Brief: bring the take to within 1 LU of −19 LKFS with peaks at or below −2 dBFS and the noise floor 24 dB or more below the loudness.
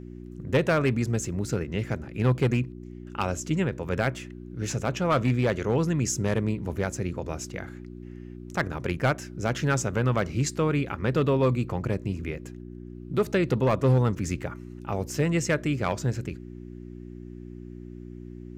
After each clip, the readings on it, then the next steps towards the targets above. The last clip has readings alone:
share of clipped samples 0.6%; peaks flattened at −16.0 dBFS; mains hum 60 Hz; hum harmonics up to 360 Hz; level of the hum −39 dBFS; integrated loudness −27.0 LKFS; sample peak −16.0 dBFS; target loudness −19.0 LKFS
→ clipped peaks rebuilt −16 dBFS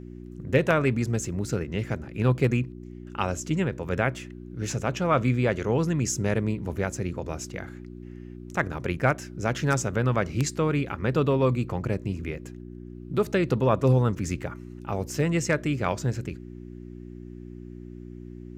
share of clipped samples 0.0%; mains hum 60 Hz; hum harmonics up to 360 Hz; level of the hum −39 dBFS
→ hum removal 60 Hz, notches 6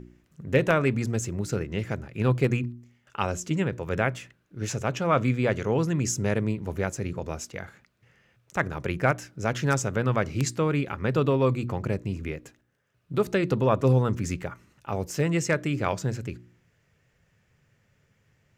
mains hum none found; integrated loudness −27.0 LKFS; sample peak −7.0 dBFS; target loudness −19.0 LKFS
→ level +8 dB
brickwall limiter −2 dBFS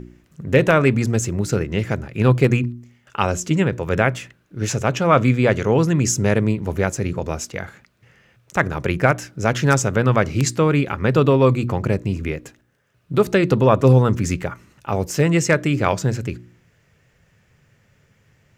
integrated loudness −19.0 LKFS; sample peak −2.0 dBFS; background noise floor −61 dBFS

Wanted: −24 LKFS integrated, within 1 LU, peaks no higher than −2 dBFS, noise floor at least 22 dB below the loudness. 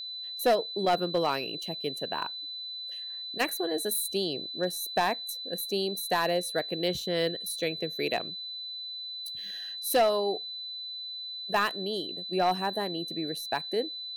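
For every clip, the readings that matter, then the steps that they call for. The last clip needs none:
share of clipped samples 0.4%; peaks flattened at −18.0 dBFS; interfering tone 4,000 Hz; level of the tone −36 dBFS; integrated loudness −30.5 LKFS; sample peak −18.0 dBFS; target loudness −24.0 LKFS
→ clipped peaks rebuilt −18 dBFS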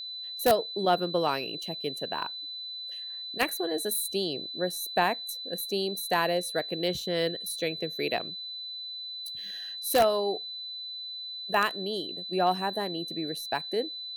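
share of clipped samples 0.0%; interfering tone 4,000 Hz; level of the tone −36 dBFS
→ notch filter 4,000 Hz, Q 30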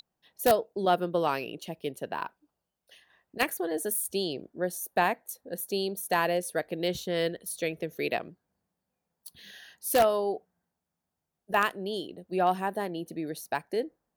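interfering tone none found; integrated loudness −30.0 LKFS; sample peak −8.5 dBFS; target loudness −24.0 LKFS
→ level +6 dB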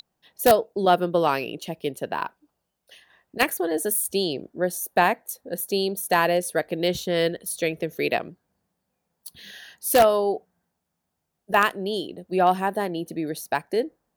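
integrated loudness −24.0 LKFS; sample peak −2.5 dBFS; background noise floor −80 dBFS

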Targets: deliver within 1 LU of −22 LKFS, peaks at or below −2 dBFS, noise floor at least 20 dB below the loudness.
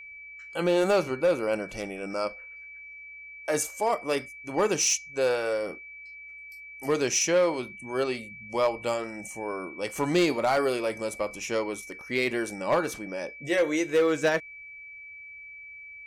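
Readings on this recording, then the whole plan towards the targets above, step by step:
share of clipped samples 0.6%; peaks flattened at −17.0 dBFS; interfering tone 2,300 Hz; level of the tone −42 dBFS; integrated loudness −27.5 LKFS; sample peak −17.0 dBFS; target loudness −22.0 LKFS
→ clipped peaks rebuilt −17 dBFS
notch filter 2,300 Hz, Q 30
level +5.5 dB

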